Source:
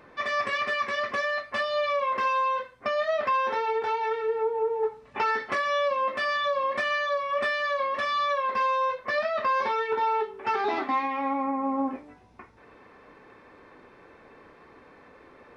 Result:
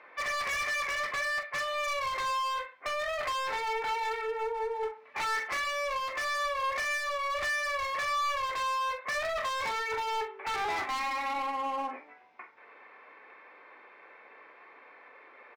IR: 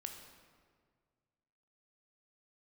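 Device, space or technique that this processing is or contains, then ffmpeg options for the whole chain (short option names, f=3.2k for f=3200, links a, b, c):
megaphone: -filter_complex "[0:a]highpass=640,lowpass=3.1k,equalizer=f=2.2k:t=o:w=0.33:g=8.5,asoftclip=type=hard:threshold=-30dB,asplit=2[a][b];[b]adelay=43,volume=-10dB[c];[a][c]amix=inputs=2:normalize=0"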